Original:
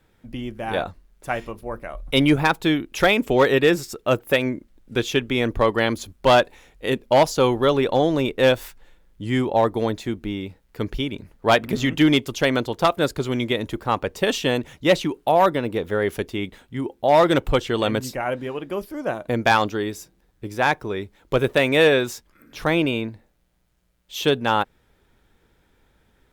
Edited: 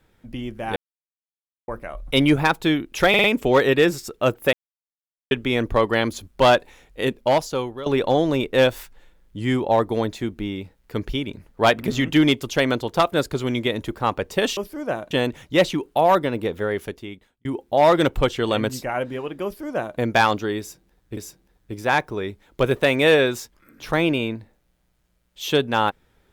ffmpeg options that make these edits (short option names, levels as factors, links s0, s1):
-filter_complex "[0:a]asplit=13[s0][s1][s2][s3][s4][s5][s6][s7][s8][s9][s10][s11][s12];[s0]atrim=end=0.76,asetpts=PTS-STARTPTS,afade=t=out:st=0.756:d=0.004:c=hsin[s13];[s1]atrim=start=0.76:end=1.68,asetpts=PTS-STARTPTS,volume=0[s14];[s2]atrim=start=1.68:end=3.142,asetpts=PTS-STARTPTS,afade=t=in:d=0.004:c=hsin[s15];[s3]atrim=start=3.088:end=3.142[s16];[s4]atrim=start=3.088:end=3.142[s17];[s5]atrim=start=3.088:end=4.38,asetpts=PTS-STARTPTS,afade=t=out:st=1.288:d=0.004:c=hsin[s18];[s6]atrim=start=4.38:end=5.16,asetpts=PTS-STARTPTS,volume=0[s19];[s7]atrim=start=5.16:end=7.71,asetpts=PTS-STARTPTS,afade=t=in:d=0.004:c=hsin,afade=t=out:st=1.77:d=0.78:silence=0.133352[s20];[s8]atrim=start=7.71:end=14.422,asetpts=PTS-STARTPTS,afade=t=in:d=0.004:c=hsin:silence=0.133352[s21];[s9]atrim=start=18.748:end=19.292[s22];[s10]atrim=start=14.418:end=16.76,asetpts=PTS-STARTPTS,afade=t=out:st=1.362:d=0.98[s23];[s11]atrim=start=16.76:end=20.482,asetpts=PTS-STARTPTS,afade=t=in:d=0.004:c=hsin[s24];[s12]atrim=start=19.898[s25];[s13][s14][s15]concat=n=3:v=0:a=1[s26];[s26][s16]acrossfade=d=0.004:c1=hsin:c2=hsin[s27];[s27][s17]acrossfade=d=0.004:c1=hsin:c2=hsin[s28];[s18][s19][s20][s21]concat=n=4:v=0:a=1[s29];[s28][s29]acrossfade=d=0.004:c1=hsin:c2=hsin[s30];[s30][s22]acrossfade=d=0.004:c1=hsin:c2=hsin[s31];[s23][s24]concat=n=2:v=0:a=1[s32];[s31][s32]acrossfade=d=0.004:c1=hsin:c2=hsin[s33];[s33][s25]acrossfade=d=0.004:c1=hsin:c2=hsin"